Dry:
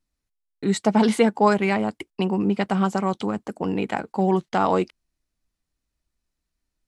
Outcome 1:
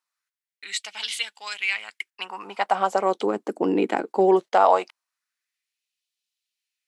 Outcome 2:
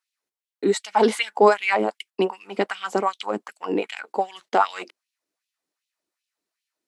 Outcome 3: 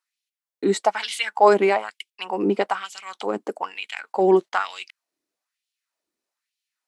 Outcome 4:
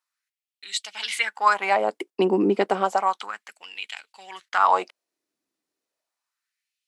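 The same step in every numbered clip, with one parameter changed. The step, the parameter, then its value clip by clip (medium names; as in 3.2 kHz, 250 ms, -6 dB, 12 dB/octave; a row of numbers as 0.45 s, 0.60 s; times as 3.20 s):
LFO high-pass, rate: 0.2 Hz, 2.6 Hz, 1.1 Hz, 0.32 Hz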